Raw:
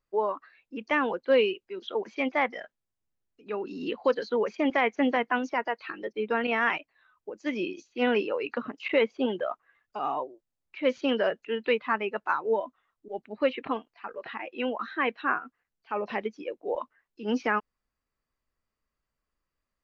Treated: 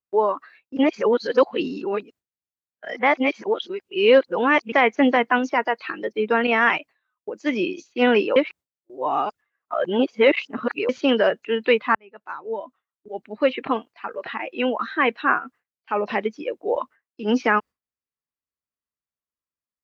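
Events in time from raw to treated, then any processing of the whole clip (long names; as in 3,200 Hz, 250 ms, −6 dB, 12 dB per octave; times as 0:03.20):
0:00.77–0:04.72: reverse
0:08.36–0:10.89: reverse
0:11.95–0:13.77: fade in
whole clip: noise gate with hold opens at −48 dBFS; high-pass filter 76 Hz; level +7.5 dB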